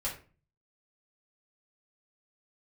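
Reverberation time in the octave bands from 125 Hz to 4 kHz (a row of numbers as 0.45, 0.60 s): 0.70, 0.55, 0.40, 0.35, 0.35, 0.25 s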